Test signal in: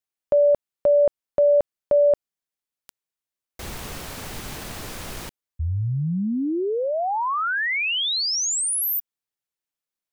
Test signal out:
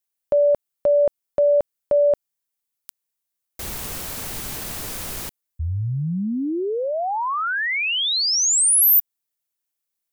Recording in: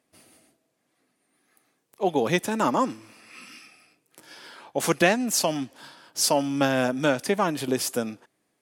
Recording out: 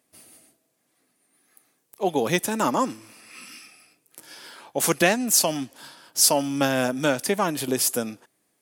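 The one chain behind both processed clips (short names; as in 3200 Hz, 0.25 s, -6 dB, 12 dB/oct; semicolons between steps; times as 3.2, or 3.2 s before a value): high shelf 7200 Hz +11.5 dB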